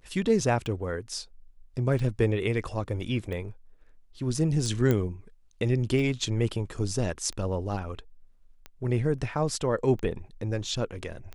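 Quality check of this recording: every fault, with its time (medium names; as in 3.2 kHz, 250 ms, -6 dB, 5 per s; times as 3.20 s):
tick 45 rpm
4.91 s: pop -13 dBFS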